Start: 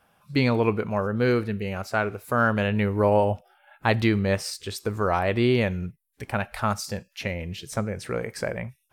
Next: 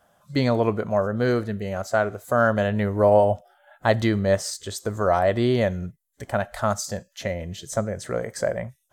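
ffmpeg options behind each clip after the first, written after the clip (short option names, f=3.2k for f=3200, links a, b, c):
-af "superequalizer=8b=2.24:12b=0.398:15b=2.24"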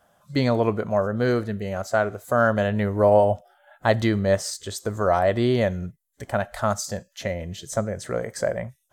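-af anull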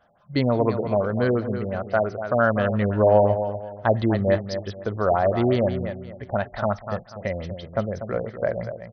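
-af "aecho=1:1:243|486|729|972:0.335|0.107|0.0343|0.011,afftfilt=real='re*lt(b*sr/1024,830*pow(6300/830,0.5+0.5*sin(2*PI*5.8*pts/sr)))':imag='im*lt(b*sr/1024,830*pow(6300/830,0.5+0.5*sin(2*PI*5.8*pts/sr)))':win_size=1024:overlap=0.75"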